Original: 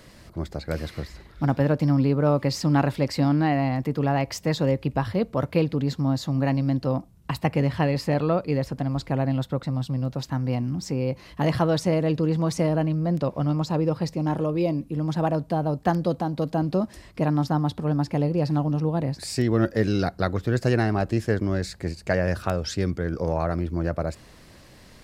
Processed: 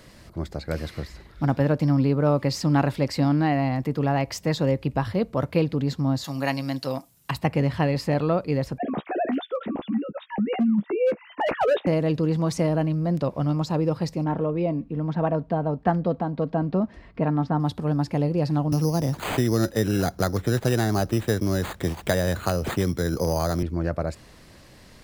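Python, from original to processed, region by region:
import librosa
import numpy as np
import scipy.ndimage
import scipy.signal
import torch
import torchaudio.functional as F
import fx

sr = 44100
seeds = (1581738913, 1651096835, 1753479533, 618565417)

y = fx.chain(x, sr, fx.tilt_eq(slope=4.0),
    fx.comb(ms=7.3, depth=0.5), at=(6.24, 7.31))
y = fx.chain(y, sr, fx.sine_speech(),
    fx.overload_stage(gain_db=17.5),
    fx.doubler(ms=14.0, db=-9.5), at=(8.78, 11.87))
y = fx.chain(y, sr, fx.lowpass(hz=2300.0, slope=12),
    fx.comb(ms=4.4, depth=0.3), at=(14.24, 17.6))
y = fx.chain(y, sr, fx.resample_bad(factor=8, down='none', up='hold'),
    fx.band_squash(depth_pct=70), at=(18.72, 23.63))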